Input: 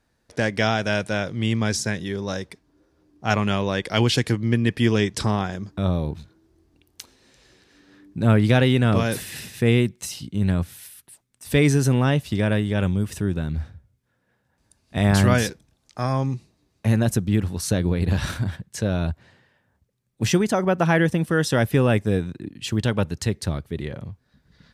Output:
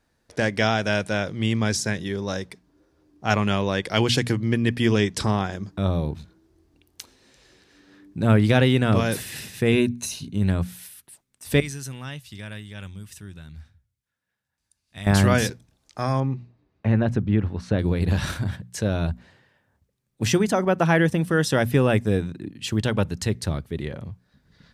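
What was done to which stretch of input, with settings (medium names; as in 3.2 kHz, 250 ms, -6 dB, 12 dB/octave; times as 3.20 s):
9.72–10.33 s: rippled EQ curve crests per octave 1.5, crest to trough 9 dB
11.60–15.07 s: amplifier tone stack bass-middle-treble 5-5-5
16.20–17.79 s: low-pass 2.3 kHz
whole clip: hum notches 60/120/180/240 Hz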